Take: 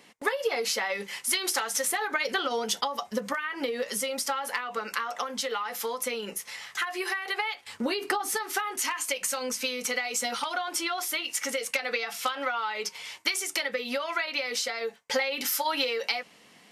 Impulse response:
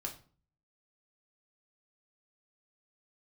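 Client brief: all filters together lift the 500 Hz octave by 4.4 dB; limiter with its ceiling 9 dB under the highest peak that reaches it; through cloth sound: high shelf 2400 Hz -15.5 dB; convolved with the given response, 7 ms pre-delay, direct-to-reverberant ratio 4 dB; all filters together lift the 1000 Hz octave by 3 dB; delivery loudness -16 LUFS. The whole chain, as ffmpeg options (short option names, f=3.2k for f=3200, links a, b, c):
-filter_complex "[0:a]equalizer=f=500:t=o:g=4.5,equalizer=f=1k:t=o:g=5.5,alimiter=limit=-18dB:level=0:latency=1,asplit=2[a][b];[1:a]atrim=start_sample=2205,adelay=7[c];[b][c]afir=irnorm=-1:irlink=0,volume=-3.5dB[d];[a][d]amix=inputs=2:normalize=0,highshelf=f=2.4k:g=-15.5,volume=14.5dB"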